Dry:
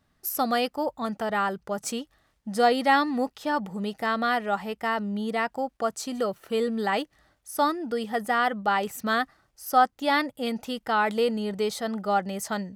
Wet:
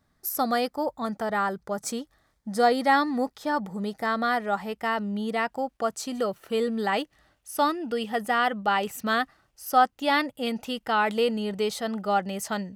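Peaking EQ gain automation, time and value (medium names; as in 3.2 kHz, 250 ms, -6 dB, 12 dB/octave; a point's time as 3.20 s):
peaking EQ 2.8 kHz 0.29 oct
4.43 s -9.5 dB
4.83 s +1 dB
6.91 s +1 dB
7.83 s +12.5 dB
8.23 s +5 dB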